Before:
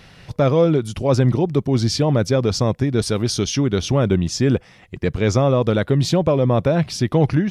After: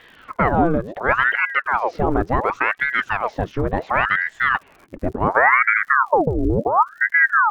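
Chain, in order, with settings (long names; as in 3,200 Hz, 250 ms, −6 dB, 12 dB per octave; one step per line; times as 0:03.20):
low-pass filter sweep 1,300 Hz → 200 Hz, 0:04.89–0:06.16
surface crackle 110 per second −38 dBFS
ring modulator whose carrier an LFO sweeps 990 Hz, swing 85%, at 0.7 Hz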